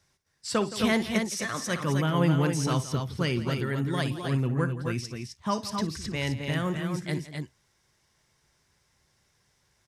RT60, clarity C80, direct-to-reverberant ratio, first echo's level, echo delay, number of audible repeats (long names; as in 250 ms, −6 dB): no reverb audible, no reverb audible, no reverb audible, −14.5 dB, 58 ms, 3